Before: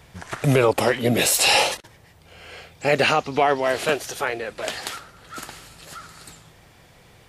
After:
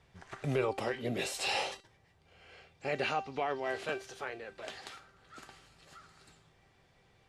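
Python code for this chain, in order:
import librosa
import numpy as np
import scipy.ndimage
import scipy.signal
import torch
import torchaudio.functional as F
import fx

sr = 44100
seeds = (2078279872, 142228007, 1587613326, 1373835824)

y = fx.air_absorb(x, sr, metres=62.0)
y = fx.comb_fb(y, sr, f0_hz=390.0, decay_s=0.29, harmonics='all', damping=0.0, mix_pct=70)
y = F.gain(torch.from_numpy(y), -5.5).numpy()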